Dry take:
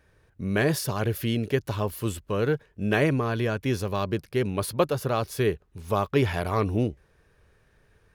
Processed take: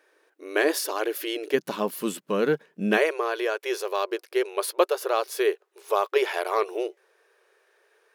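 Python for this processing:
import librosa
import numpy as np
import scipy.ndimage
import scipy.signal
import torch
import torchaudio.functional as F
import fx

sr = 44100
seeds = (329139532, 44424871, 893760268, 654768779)

y = fx.brickwall_highpass(x, sr, low_hz=fx.steps((0.0, 290.0), (1.53, 160.0), (2.96, 340.0)))
y = y * librosa.db_to_amplitude(2.5)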